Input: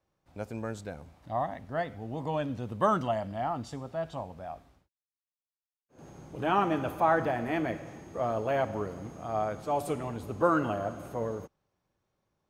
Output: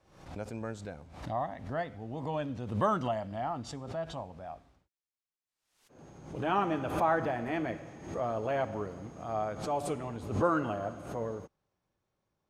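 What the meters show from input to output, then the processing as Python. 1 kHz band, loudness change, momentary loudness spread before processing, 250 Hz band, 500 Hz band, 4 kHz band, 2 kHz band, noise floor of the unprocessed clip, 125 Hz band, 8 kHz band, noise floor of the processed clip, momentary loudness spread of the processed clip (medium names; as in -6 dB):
-2.5 dB, -2.5 dB, 15 LU, -2.0 dB, -2.5 dB, -1.5 dB, -2.5 dB, under -85 dBFS, -1.0 dB, no reading, under -85 dBFS, 15 LU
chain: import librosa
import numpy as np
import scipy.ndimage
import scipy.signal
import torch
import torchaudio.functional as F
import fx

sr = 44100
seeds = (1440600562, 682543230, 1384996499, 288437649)

y = scipy.signal.sosfilt(scipy.signal.butter(2, 9100.0, 'lowpass', fs=sr, output='sos'), x)
y = fx.pre_swell(y, sr, db_per_s=86.0)
y = y * 10.0 ** (-3.0 / 20.0)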